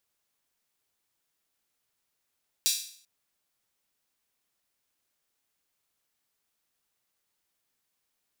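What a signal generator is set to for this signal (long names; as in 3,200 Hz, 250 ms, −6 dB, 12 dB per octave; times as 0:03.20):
open synth hi-hat length 0.39 s, high-pass 4,100 Hz, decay 0.54 s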